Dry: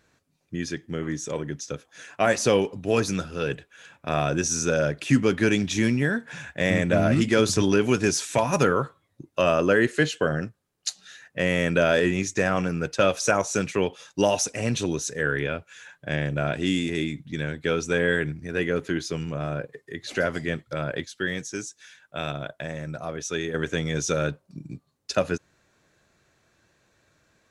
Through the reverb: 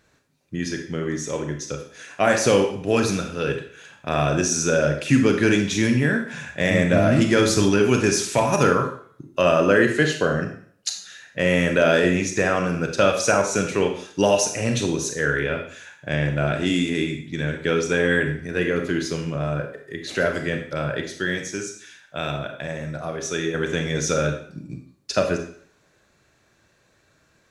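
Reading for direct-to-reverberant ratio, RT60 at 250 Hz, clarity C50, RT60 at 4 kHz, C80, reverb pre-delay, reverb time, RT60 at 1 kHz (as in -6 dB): 4.0 dB, 0.50 s, 7.0 dB, 0.50 s, 10.5 dB, 29 ms, 0.50 s, 0.55 s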